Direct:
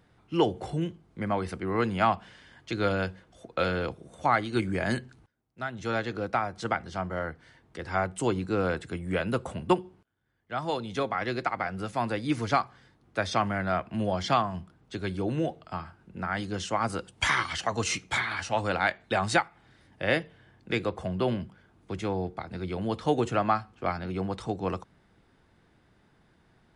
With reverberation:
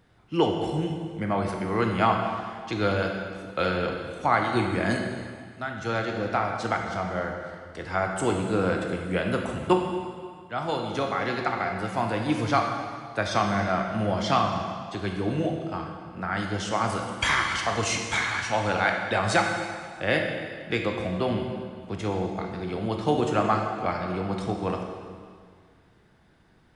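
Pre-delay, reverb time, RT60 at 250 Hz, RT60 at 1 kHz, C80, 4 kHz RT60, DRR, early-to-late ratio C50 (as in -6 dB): 18 ms, 1.9 s, 1.9 s, 1.9 s, 5.0 dB, 1.8 s, 2.0 dB, 3.5 dB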